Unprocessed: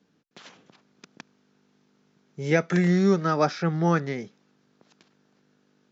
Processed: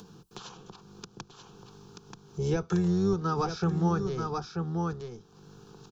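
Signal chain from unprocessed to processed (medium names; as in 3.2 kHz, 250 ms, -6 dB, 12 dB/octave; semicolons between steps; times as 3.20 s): octave divider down 1 oct, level -1 dB; on a send: delay 933 ms -10 dB; on the sum: compression 3:1, threshold -28 dBFS, peak gain reduction 11 dB; static phaser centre 400 Hz, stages 8; upward compressor, threshold -43 dBFS; trim +4.5 dB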